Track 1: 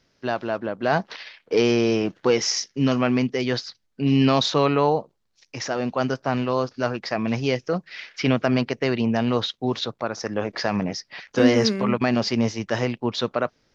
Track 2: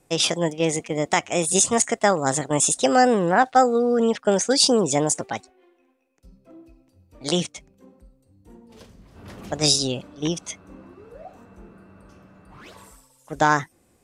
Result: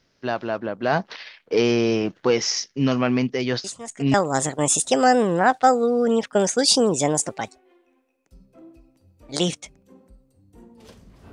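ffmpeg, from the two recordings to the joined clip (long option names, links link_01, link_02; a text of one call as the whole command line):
ffmpeg -i cue0.wav -i cue1.wav -filter_complex "[1:a]asplit=2[link_01][link_02];[0:a]apad=whole_dur=11.32,atrim=end=11.32,atrim=end=4.142[link_03];[link_02]atrim=start=2.058:end=9.24[link_04];[link_01]atrim=start=1.56:end=2.06,asetpts=PTS-STARTPTS,volume=-16dB,afade=type=in:duration=0.004:curve=hsin,afade=type=out:start_time=0.496:duration=0.004:curve=hsin,adelay=3640[link_05];[link_03][link_04]acrossfade=duration=0.004:curve1=hsin:curve2=hsin[link_06];[link_06][link_05]amix=inputs=2:normalize=0" out.wav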